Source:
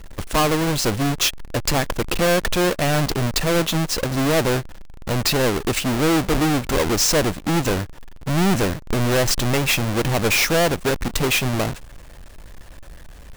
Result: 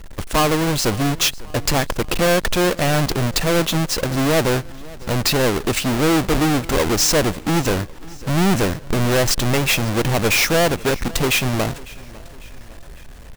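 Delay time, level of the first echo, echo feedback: 550 ms, -21.5 dB, 50%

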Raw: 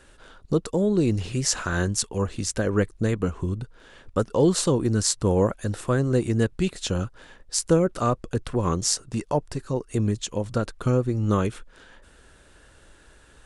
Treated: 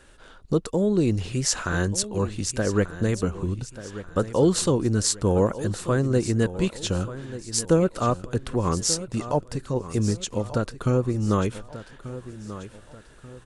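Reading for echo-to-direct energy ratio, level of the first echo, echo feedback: -13.5 dB, -14.0 dB, 39%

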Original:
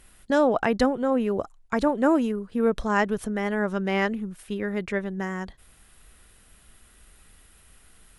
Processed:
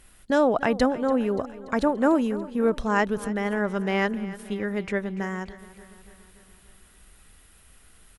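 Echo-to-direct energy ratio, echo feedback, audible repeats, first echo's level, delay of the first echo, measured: -15.0 dB, 59%, 4, -17.0 dB, 289 ms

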